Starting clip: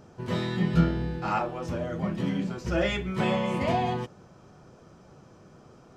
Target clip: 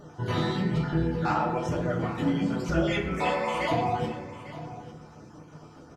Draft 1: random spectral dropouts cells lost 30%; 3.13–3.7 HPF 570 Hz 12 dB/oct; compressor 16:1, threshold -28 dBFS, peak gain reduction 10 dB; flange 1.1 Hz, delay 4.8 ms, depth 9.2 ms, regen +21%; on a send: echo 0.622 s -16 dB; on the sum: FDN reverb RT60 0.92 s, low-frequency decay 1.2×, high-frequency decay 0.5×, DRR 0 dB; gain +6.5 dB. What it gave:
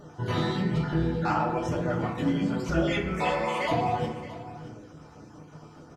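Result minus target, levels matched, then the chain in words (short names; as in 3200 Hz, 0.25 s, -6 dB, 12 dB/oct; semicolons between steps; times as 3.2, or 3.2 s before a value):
echo 0.226 s early
random spectral dropouts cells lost 30%; 3.13–3.7 HPF 570 Hz 12 dB/oct; compressor 16:1, threshold -28 dBFS, peak gain reduction 10 dB; flange 1.1 Hz, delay 4.8 ms, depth 9.2 ms, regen +21%; on a send: echo 0.848 s -16 dB; on the sum: FDN reverb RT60 0.92 s, low-frequency decay 1.2×, high-frequency decay 0.5×, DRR 0 dB; gain +6.5 dB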